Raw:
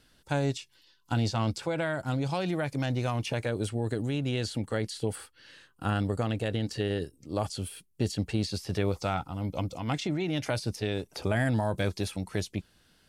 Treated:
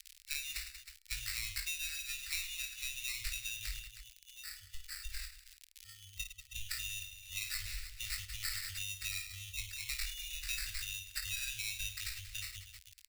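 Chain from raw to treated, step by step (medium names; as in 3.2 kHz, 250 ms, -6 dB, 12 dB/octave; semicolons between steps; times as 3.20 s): graphic EQ 250/500/1000/2000/4000/8000 Hz -5/+9/+5/-11/+10/+8 dB; 3.77–6.56 s: level held to a coarse grid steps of 22 dB; spectral noise reduction 27 dB; sample-rate reducer 3.2 kHz, jitter 0%; reverse bouncing-ball echo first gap 20 ms, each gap 1.6×, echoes 5; compression 3:1, threshold -39 dBFS, peak gain reduction 16 dB; crackle 84 per s -46 dBFS; inverse Chebyshev band-stop 200–570 Hz, stop band 80 dB; resonant low shelf 550 Hz +7 dB, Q 1.5; tape noise reduction on one side only encoder only; trim +7.5 dB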